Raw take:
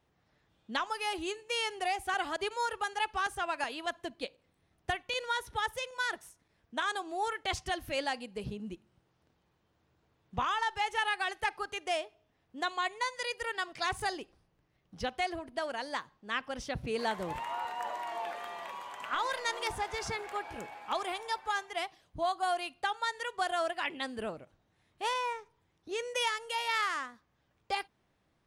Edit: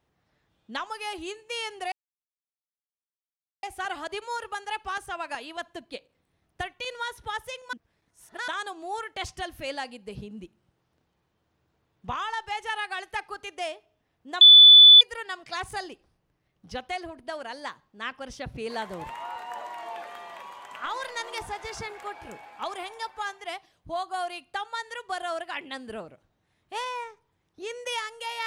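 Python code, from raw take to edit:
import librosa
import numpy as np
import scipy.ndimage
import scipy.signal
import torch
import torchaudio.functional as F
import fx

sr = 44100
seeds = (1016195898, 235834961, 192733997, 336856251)

y = fx.edit(x, sr, fx.insert_silence(at_s=1.92, length_s=1.71),
    fx.reverse_span(start_s=6.02, length_s=0.75),
    fx.bleep(start_s=12.7, length_s=0.6, hz=3480.0, db=-7.5), tone=tone)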